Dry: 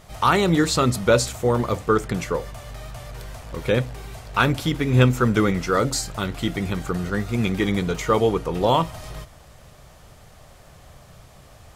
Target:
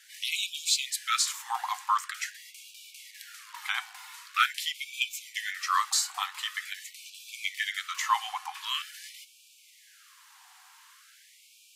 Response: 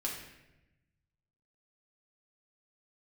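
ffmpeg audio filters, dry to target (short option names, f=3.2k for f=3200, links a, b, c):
-af "lowshelf=f=450:g=-9.5,bandreject=f=407:t=h:w=4,bandreject=f=814:t=h:w=4,bandreject=f=1.221k:t=h:w=4,bandreject=f=1.628k:t=h:w=4,bandreject=f=2.035k:t=h:w=4,bandreject=f=2.442k:t=h:w=4,bandreject=f=2.849k:t=h:w=4,bandreject=f=3.256k:t=h:w=4,bandreject=f=3.663k:t=h:w=4,bandreject=f=4.07k:t=h:w=4,bandreject=f=4.477k:t=h:w=4,bandreject=f=4.884k:t=h:w=4,bandreject=f=5.291k:t=h:w=4,bandreject=f=5.698k:t=h:w=4,bandreject=f=6.105k:t=h:w=4,bandreject=f=6.512k:t=h:w=4,bandreject=f=6.919k:t=h:w=4,bandreject=f=7.326k:t=h:w=4,bandreject=f=7.733k:t=h:w=4,bandreject=f=8.14k:t=h:w=4,bandreject=f=8.547k:t=h:w=4,bandreject=f=8.954k:t=h:w=4,bandreject=f=9.361k:t=h:w=4,bandreject=f=9.768k:t=h:w=4,bandreject=f=10.175k:t=h:w=4,bandreject=f=10.582k:t=h:w=4,bandreject=f=10.989k:t=h:w=4,bandreject=f=11.396k:t=h:w=4,bandreject=f=11.803k:t=h:w=4,bandreject=f=12.21k:t=h:w=4,afreqshift=-150,afftfilt=real='re*gte(b*sr/1024,710*pow(2300/710,0.5+0.5*sin(2*PI*0.45*pts/sr)))':imag='im*gte(b*sr/1024,710*pow(2300/710,0.5+0.5*sin(2*PI*0.45*pts/sr)))':win_size=1024:overlap=0.75"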